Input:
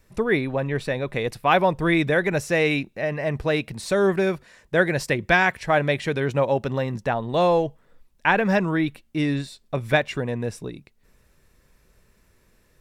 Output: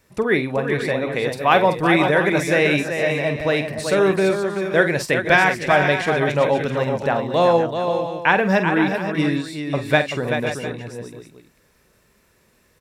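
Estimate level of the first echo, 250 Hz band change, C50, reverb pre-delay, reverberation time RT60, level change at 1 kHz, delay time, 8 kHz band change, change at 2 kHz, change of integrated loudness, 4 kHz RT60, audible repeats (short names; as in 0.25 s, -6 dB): -10.0 dB, +3.5 dB, none, none, none, +4.5 dB, 47 ms, +4.5 dB, +4.5 dB, +4.0 dB, none, 4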